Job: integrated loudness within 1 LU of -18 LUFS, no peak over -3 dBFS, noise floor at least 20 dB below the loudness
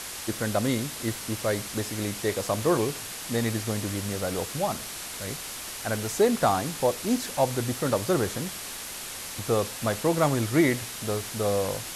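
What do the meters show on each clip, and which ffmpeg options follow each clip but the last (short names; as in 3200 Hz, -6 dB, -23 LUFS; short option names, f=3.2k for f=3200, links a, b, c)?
noise floor -38 dBFS; noise floor target -48 dBFS; loudness -27.5 LUFS; peak -9.5 dBFS; loudness target -18.0 LUFS
-> -af "afftdn=nr=10:nf=-38"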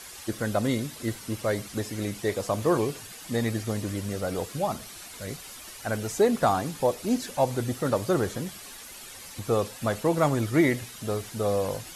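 noise floor -44 dBFS; noise floor target -48 dBFS
-> -af "afftdn=nr=6:nf=-44"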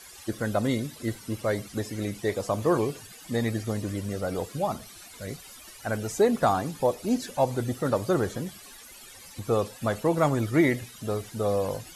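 noise floor -48 dBFS; loudness -28.0 LUFS; peak -10.0 dBFS; loudness target -18.0 LUFS
-> -af "volume=10dB,alimiter=limit=-3dB:level=0:latency=1"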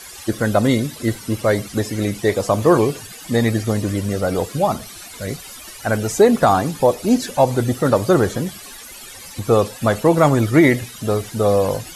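loudness -18.0 LUFS; peak -3.0 dBFS; noise floor -38 dBFS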